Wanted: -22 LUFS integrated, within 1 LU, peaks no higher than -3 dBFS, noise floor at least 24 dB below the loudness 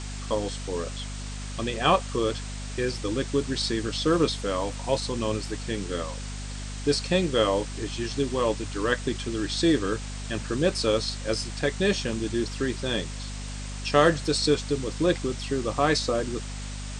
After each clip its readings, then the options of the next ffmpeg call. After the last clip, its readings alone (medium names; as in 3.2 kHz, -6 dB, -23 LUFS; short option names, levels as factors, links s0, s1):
hum 50 Hz; highest harmonic 250 Hz; hum level -33 dBFS; noise floor -35 dBFS; noise floor target -51 dBFS; loudness -27.0 LUFS; peak level -7.0 dBFS; loudness target -22.0 LUFS
-> -af "bandreject=f=50:t=h:w=6,bandreject=f=100:t=h:w=6,bandreject=f=150:t=h:w=6,bandreject=f=200:t=h:w=6,bandreject=f=250:t=h:w=6"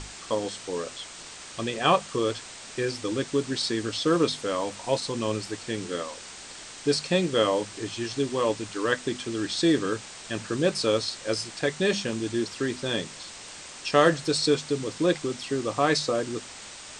hum not found; noise floor -43 dBFS; noise floor target -51 dBFS
-> -af "afftdn=nr=8:nf=-43"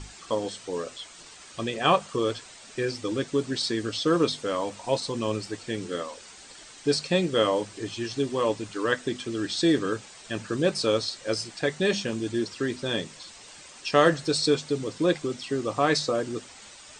noise floor -48 dBFS; noise floor target -51 dBFS
-> -af "afftdn=nr=6:nf=-48"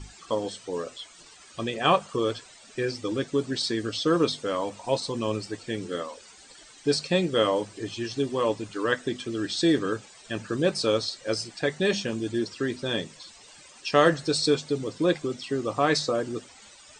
noise floor -51 dBFS; loudness -27.0 LUFS; peak level -6.5 dBFS; loudness target -22.0 LUFS
-> -af "volume=1.78,alimiter=limit=0.708:level=0:latency=1"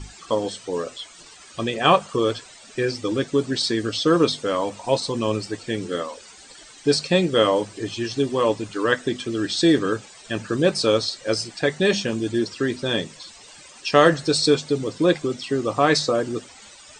loudness -22.0 LUFS; peak level -3.0 dBFS; noise floor -46 dBFS